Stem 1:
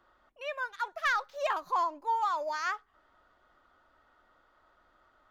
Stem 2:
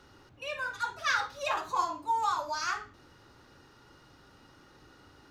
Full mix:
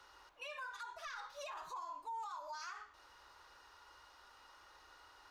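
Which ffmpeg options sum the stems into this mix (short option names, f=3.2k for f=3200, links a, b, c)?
-filter_complex "[0:a]equalizer=f=68:t=o:w=2.8:g=14,volume=-11dB[a];[1:a]highpass=660,equalizer=f=1k:t=o:w=0.25:g=8,volume=-1,volume=-2dB[b];[a][b]amix=inputs=2:normalize=0,equalizer=f=240:w=1.3:g=-6,acrossover=split=250[c][d];[d]acompressor=threshold=-43dB:ratio=2.5[e];[c][e]amix=inputs=2:normalize=0,alimiter=level_in=14.5dB:limit=-24dB:level=0:latency=1:release=73,volume=-14.5dB"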